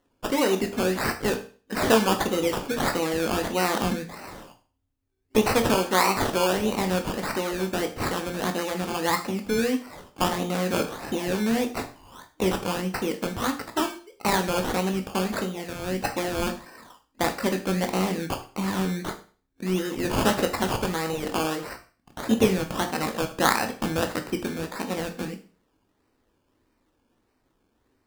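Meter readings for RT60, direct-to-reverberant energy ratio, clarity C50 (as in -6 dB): 0.40 s, 5.0 dB, 12.5 dB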